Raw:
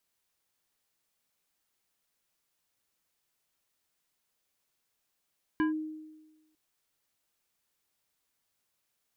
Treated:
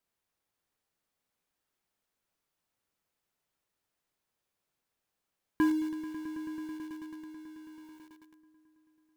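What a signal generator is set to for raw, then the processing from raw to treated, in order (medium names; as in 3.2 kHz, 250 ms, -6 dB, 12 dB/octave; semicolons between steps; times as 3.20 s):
FM tone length 0.95 s, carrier 311 Hz, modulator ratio 4.25, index 0.69, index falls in 0.13 s linear, decay 1.17 s, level -22.5 dB
treble shelf 2.2 kHz -8.5 dB; echo with a slow build-up 109 ms, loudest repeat 5, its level -17 dB; in parallel at -6 dB: companded quantiser 4-bit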